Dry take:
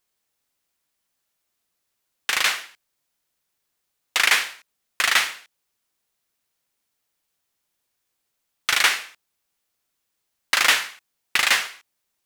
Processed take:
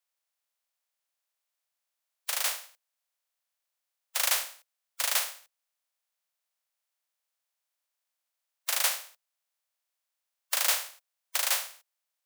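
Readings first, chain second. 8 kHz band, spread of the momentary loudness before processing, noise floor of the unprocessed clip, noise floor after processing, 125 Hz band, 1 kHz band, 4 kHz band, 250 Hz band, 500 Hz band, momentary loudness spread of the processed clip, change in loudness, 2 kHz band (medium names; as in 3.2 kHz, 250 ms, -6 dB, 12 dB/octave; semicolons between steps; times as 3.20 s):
-3.0 dB, 13 LU, -78 dBFS, under -85 dBFS, no reading, -11.0 dB, -10.0 dB, under -40 dB, -6.5 dB, 13 LU, -8.0 dB, -15.0 dB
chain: spectral contrast reduction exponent 0.15; steep high-pass 500 Hz 96 dB/octave; trim -8 dB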